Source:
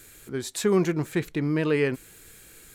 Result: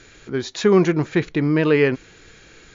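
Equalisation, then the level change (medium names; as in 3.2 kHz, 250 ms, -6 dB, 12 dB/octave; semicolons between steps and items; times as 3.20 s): brick-wall FIR low-pass 7.2 kHz; distance through air 74 m; bass shelf 210 Hz -3 dB; +8.0 dB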